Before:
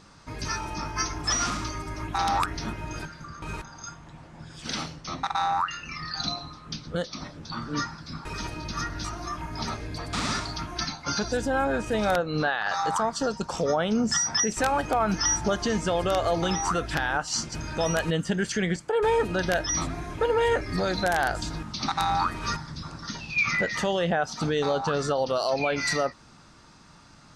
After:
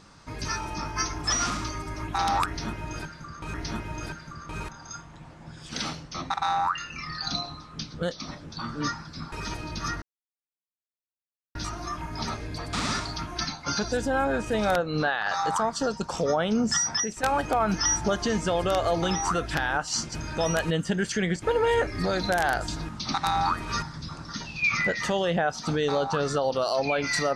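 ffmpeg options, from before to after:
ffmpeg -i in.wav -filter_complex "[0:a]asplit=5[link_01][link_02][link_03][link_04][link_05];[link_01]atrim=end=3.542[link_06];[link_02]atrim=start=2.468:end=8.95,asetpts=PTS-STARTPTS,afade=type=out:start_time=6.478:duration=0.004:curve=hsin,apad=pad_dur=1.53[link_07];[link_03]atrim=start=8.95:end=14.63,asetpts=PTS-STARTPTS,afade=type=in:duration=0.004:curve=hsin,afade=type=out:start_time=5.31:duration=0.37:silence=0.281838[link_08];[link_04]atrim=start=14.63:end=18.822,asetpts=PTS-STARTPTS,afade=type=in:duration=0.004:curve=hsin:silence=0.281838[link_09];[link_05]atrim=start=20.158[link_10];[link_07][link_08][link_09]concat=n=3:v=0:a=1[link_11];[link_06][link_11]acrossfade=duration=0.004:curve1=hsin:curve2=hsin[link_12];[link_12][link_10]acrossfade=duration=0.004:curve1=hsin:curve2=hsin" out.wav

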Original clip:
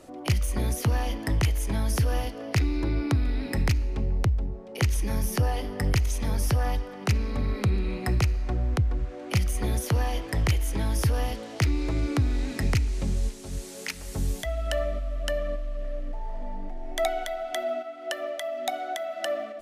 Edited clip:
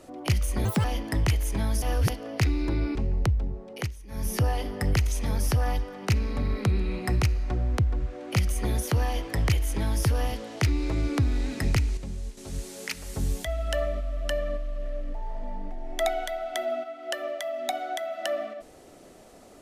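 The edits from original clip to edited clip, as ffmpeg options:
ffmpeg -i in.wav -filter_complex "[0:a]asplit=10[link_01][link_02][link_03][link_04][link_05][link_06][link_07][link_08][link_09][link_10];[link_01]atrim=end=0.654[link_11];[link_02]atrim=start=0.65:end=0.99,asetpts=PTS-STARTPTS,asetrate=78057,aresample=44100,atrim=end_sample=8471,asetpts=PTS-STARTPTS[link_12];[link_03]atrim=start=0.986:end=1.972[link_13];[link_04]atrim=start=1.968:end=2.242,asetpts=PTS-STARTPTS,areverse[link_14];[link_05]atrim=start=2.238:end=3.102[link_15];[link_06]atrim=start=3.938:end=4.93,asetpts=PTS-STARTPTS,afade=type=out:start_time=0.752:duration=0.24:silence=0.11885[link_16];[link_07]atrim=start=4.93:end=5.06,asetpts=PTS-STARTPTS,volume=-18.5dB[link_17];[link_08]atrim=start=5.06:end=12.962,asetpts=PTS-STARTPTS,afade=type=in:duration=0.24:silence=0.11885[link_18];[link_09]atrim=start=12.958:end=13.362,asetpts=PTS-STARTPTS,volume=-8dB[link_19];[link_10]atrim=start=13.358[link_20];[link_11][link_12]acrossfade=duration=0.004:curve1=hsin:curve2=hsin[link_21];[link_21][link_13]acrossfade=duration=0.004:curve1=hsin:curve2=hsin[link_22];[link_22][link_14]acrossfade=duration=0.004:curve1=hsin:curve2=hsin[link_23];[link_23][link_15]acrossfade=duration=0.004:curve1=hsin:curve2=hsin[link_24];[link_16][link_17][link_18]concat=n=3:v=0:a=1[link_25];[link_24][link_25]acrossfade=duration=0.004:curve1=hsin:curve2=hsin[link_26];[link_26][link_19]acrossfade=duration=0.004:curve1=hsin:curve2=hsin[link_27];[link_27][link_20]acrossfade=duration=0.004:curve1=hsin:curve2=hsin" out.wav

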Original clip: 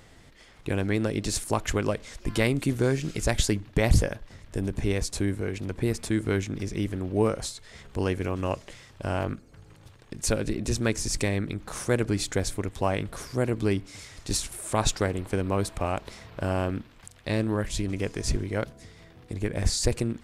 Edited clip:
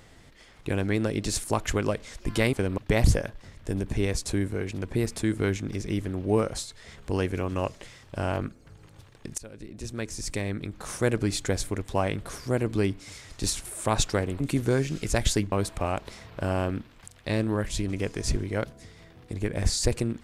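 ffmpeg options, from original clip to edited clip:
ffmpeg -i in.wav -filter_complex "[0:a]asplit=6[link_01][link_02][link_03][link_04][link_05][link_06];[link_01]atrim=end=2.532[link_07];[link_02]atrim=start=15.268:end=15.522[link_08];[link_03]atrim=start=3.648:end=10.25,asetpts=PTS-STARTPTS,afade=type=out:start_time=6.598:duration=0.004:curve=hsin:silence=0.0707946[link_09];[link_04]atrim=start=10.25:end=15.272,asetpts=PTS-STARTPTS,afade=type=in:duration=1.7:silence=0.0707946[link_10];[link_05]atrim=start=2.528:end=3.652[link_11];[link_06]atrim=start=15.518[link_12];[link_07][link_08]acrossfade=duration=0.004:curve1=hsin:curve2=hsin[link_13];[link_09][link_10]concat=n=2:v=0:a=1[link_14];[link_13][link_14]acrossfade=duration=0.004:curve1=hsin:curve2=hsin[link_15];[link_15][link_11]acrossfade=duration=0.004:curve1=hsin:curve2=hsin[link_16];[link_16][link_12]acrossfade=duration=0.004:curve1=hsin:curve2=hsin" out.wav

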